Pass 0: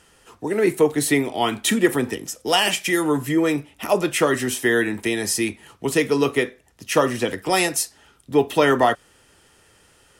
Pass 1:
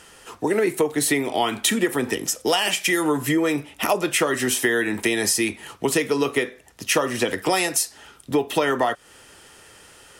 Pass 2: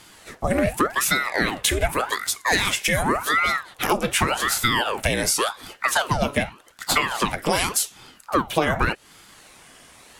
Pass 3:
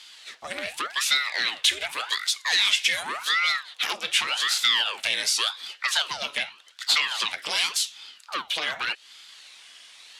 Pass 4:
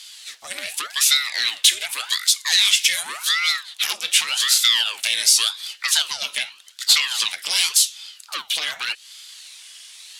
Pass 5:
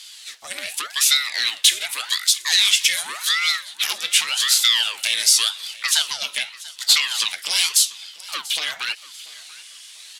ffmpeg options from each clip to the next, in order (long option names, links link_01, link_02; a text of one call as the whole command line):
ffmpeg -i in.wav -af "lowshelf=frequency=250:gain=-6.5,acompressor=threshold=-26dB:ratio=6,volume=8dB" out.wav
ffmpeg -i in.wav -af "aeval=exprs='val(0)*sin(2*PI*940*n/s+940*0.85/0.87*sin(2*PI*0.87*n/s))':channel_layout=same,volume=2.5dB" out.wav
ffmpeg -i in.wav -af "aeval=exprs='0.841*sin(PI/2*2.82*val(0)/0.841)':channel_layout=same,bandpass=frequency=3700:width_type=q:width=1.8:csg=0,volume=-5.5dB" out.wav
ffmpeg -i in.wav -af "crystalizer=i=6.5:c=0,volume=-6dB" out.wav
ffmpeg -i in.wav -af "aecho=1:1:689|1378|2067:0.106|0.0339|0.0108" out.wav